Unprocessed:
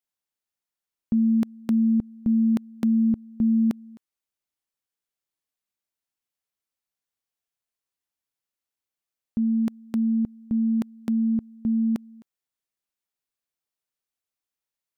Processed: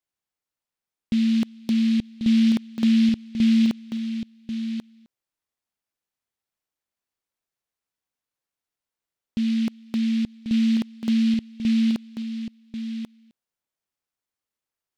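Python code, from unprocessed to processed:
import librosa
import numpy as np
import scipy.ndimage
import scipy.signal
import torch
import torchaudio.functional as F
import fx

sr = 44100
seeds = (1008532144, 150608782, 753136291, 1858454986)

p1 = x + fx.echo_single(x, sr, ms=1089, db=-8.0, dry=0)
y = fx.noise_mod_delay(p1, sr, seeds[0], noise_hz=3000.0, depth_ms=0.073)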